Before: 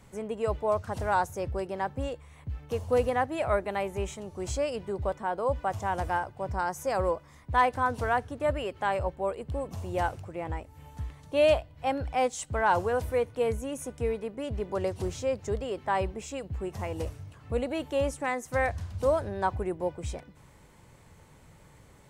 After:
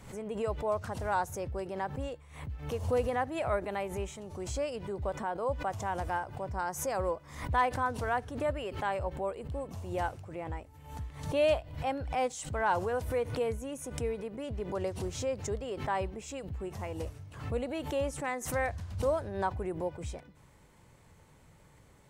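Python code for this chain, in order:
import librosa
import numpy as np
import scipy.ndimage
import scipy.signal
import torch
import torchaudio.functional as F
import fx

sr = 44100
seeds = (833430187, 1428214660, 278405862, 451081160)

y = fx.pre_swell(x, sr, db_per_s=88.0)
y = F.gain(torch.from_numpy(y), -4.5).numpy()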